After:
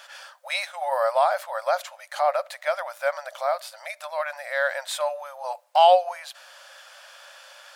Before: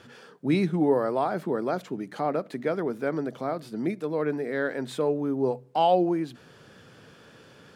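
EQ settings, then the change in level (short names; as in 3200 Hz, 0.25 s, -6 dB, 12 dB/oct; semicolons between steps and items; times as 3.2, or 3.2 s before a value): brick-wall FIR high-pass 530 Hz; high shelf 4000 Hz +7 dB; +6.5 dB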